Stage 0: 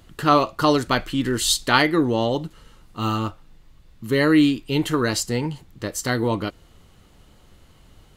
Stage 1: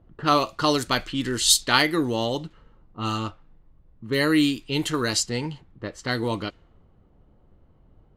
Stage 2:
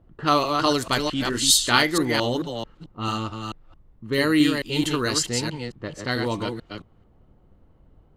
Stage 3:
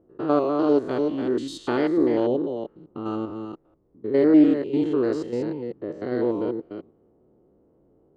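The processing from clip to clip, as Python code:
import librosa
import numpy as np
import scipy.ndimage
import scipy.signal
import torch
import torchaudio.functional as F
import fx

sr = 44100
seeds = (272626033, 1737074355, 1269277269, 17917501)

y1 = fx.env_lowpass(x, sr, base_hz=690.0, full_db=-16.5)
y1 = fx.high_shelf(y1, sr, hz=3100.0, db=10.5)
y1 = y1 * 10.0 ** (-4.5 / 20.0)
y2 = fx.reverse_delay(y1, sr, ms=220, wet_db=-5.0)
y3 = fx.spec_steps(y2, sr, hold_ms=100)
y3 = fx.bandpass_q(y3, sr, hz=390.0, q=2.2)
y3 = fx.doppler_dist(y3, sr, depth_ms=0.12)
y3 = y3 * 10.0 ** (8.5 / 20.0)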